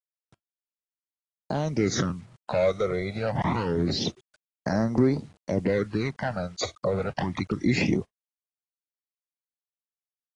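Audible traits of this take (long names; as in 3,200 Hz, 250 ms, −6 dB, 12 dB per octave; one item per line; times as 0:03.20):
phaser sweep stages 12, 0.26 Hz, lowest notch 280–3,100 Hz
a quantiser's noise floor 10 bits, dither none
AAC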